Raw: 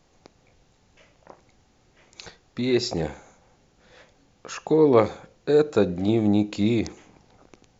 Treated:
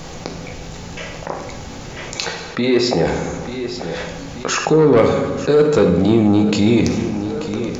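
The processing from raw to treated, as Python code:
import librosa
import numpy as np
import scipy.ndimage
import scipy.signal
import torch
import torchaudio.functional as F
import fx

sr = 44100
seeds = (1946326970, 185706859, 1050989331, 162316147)

p1 = fx.bass_treble(x, sr, bass_db=-10, treble_db=-10, at=(2.24, 3.07))
p2 = 10.0 ** (-14.0 / 20.0) * np.tanh(p1 / 10.0 ** (-14.0 / 20.0))
p3 = p2 + fx.echo_feedback(p2, sr, ms=886, feedback_pct=42, wet_db=-19.5, dry=0)
p4 = fx.rev_fdn(p3, sr, rt60_s=0.97, lf_ratio=1.35, hf_ratio=0.9, size_ms=36.0, drr_db=5.5)
p5 = fx.env_flatten(p4, sr, amount_pct=50)
y = p5 * librosa.db_to_amplitude(6.0)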